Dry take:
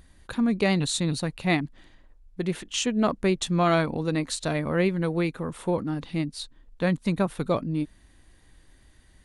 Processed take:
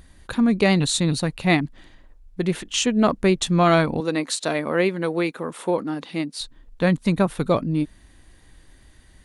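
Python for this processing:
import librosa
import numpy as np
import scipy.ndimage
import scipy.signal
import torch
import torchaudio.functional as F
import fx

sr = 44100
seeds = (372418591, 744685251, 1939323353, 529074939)

y = fx.highpass(x, sr, hz=270.0, slope=12, at=(4.0, 6.41))
y = y * 10.0 ** (5.0 / 20.0)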